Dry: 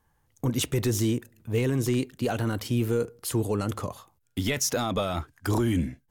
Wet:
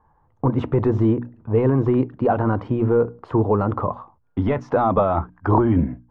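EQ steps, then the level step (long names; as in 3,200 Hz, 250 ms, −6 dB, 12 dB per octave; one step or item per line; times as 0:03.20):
low-pass with resonance 1,000 Hz, resonance Q 2.4
high-frequency loss of the air 85 metres
mains-hum notches 60/120/180/240/300 Hz
+7.5 dB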